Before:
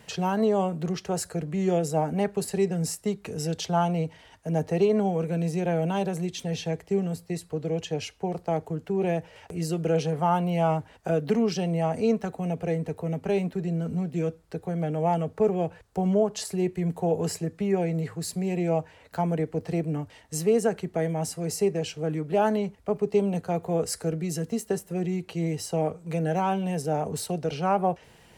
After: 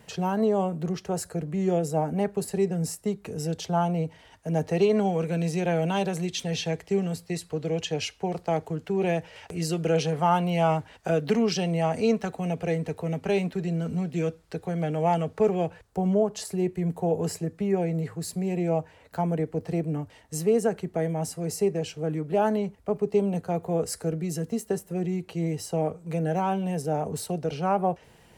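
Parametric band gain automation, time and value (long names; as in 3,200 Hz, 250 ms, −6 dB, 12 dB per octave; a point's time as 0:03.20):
parametric band 3,600 Hz 2.9 octaves
0:03.99 −4 dB
0:04.96 +5.5 dB
0:15.57 +5.5 dB
0:15.98 −3 dB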